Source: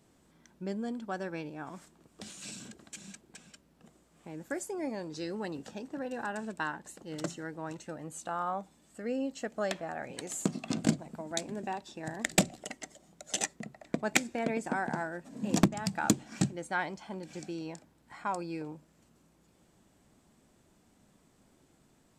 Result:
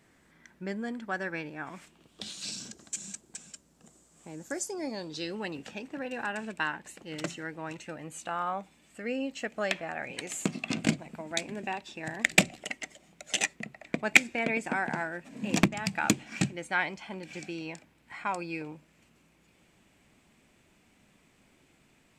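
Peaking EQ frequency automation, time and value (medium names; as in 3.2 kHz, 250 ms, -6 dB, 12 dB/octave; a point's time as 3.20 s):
peaking EQ +12.5 dB 0.89 oct
1.57 s 1.9 kHz
2.95 s 7.3 kHz
4.37 s 7.3 kHz
5.52 s 2.4 kHz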